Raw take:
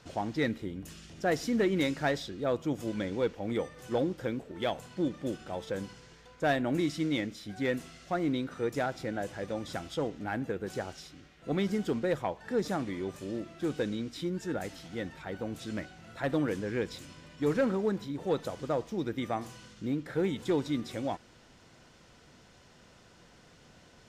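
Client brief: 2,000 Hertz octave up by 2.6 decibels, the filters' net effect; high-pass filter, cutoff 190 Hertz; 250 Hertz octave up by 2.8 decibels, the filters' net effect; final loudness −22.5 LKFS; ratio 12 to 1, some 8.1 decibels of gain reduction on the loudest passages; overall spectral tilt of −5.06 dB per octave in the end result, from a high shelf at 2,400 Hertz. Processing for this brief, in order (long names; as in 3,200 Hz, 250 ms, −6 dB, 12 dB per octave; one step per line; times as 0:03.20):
high-pass filter 190 Hz
parametric band 250 Hz +5 dB
parametric band 2,000 Hz +6 dB
high-shelf EQ 2,400 Hz −6.5 dB
downward compressor 12 to 1, threshold −30 dBFS
level +14.5 dB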